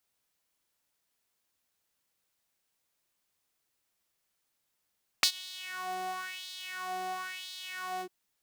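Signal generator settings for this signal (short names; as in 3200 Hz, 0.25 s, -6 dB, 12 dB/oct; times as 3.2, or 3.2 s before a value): synth patch with filter wobble F#4, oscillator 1 saw, oscillator 2 sine, interval -12 st, oscillator 2 level 0 dB, sub -30 dB, noise -21.5 dB, filter highpass, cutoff 770 Hz, Q 3.4, filter envelope 2.5 oct, filter decay 0.14 s, attack 1.1 ms, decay 0.08 s, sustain -23 dB, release 0.07 s, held 2.78 s, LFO 0.98 Hz, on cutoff 1.3 oct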